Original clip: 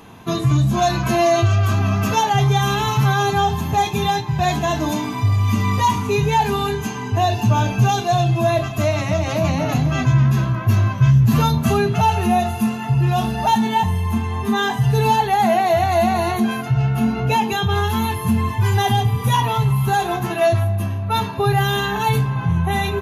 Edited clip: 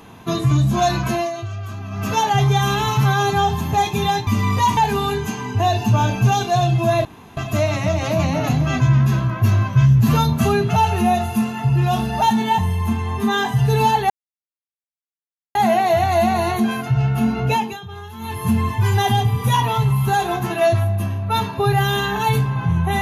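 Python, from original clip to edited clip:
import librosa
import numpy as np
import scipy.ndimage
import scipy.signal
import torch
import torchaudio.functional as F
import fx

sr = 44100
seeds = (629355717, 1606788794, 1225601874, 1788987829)

y = fx.edit(x, sr, fx.fade_down_up(start_s=0.89, length_s=1.44, db=-12.5, fade_s=0.43, curve='qsin'),
    fx.cut(start_s=4.27, length_s=1.21),
    fx.cut(start_s=5.98, length_s=0.36),
    fx.insert_room_tone(at_s=8.62, length_s=0.32),
    fx.insert_silence(at_s=15.35, length_s=1.45),
    fx.fade_down_up(start_s=17.31, length_s=0.96, db=-15.5, fade_s=0.29), tone=tone)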